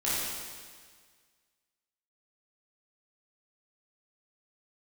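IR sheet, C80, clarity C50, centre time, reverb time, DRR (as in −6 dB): −1.0 dB, −3.5 dB, 129 ms, 1.7 s, −10.0 dB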